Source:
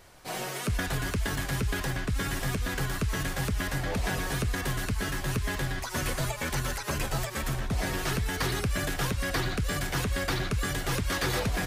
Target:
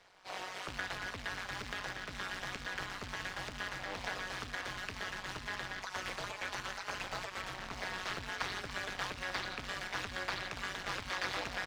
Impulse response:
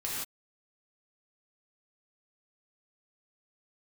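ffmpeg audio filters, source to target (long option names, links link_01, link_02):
-filter_complex "[0:a]acrusher=bits=2:mode=log:mix=0:aa=0.000001,acrossover=split=540 5800:gain=0.178 1 0.0794[link_01][link_02][link_03];[link_01][link_02][link_03]amix=inputs=3:normalize=0,asplit=2[link_04][link_05];[link_05]aecho=0:1:285:0.188[link_06];[link_04][link_06]amix=inputs=2:normalize=0,tremolo=f=190:d=0.974,volume=-1.5dB"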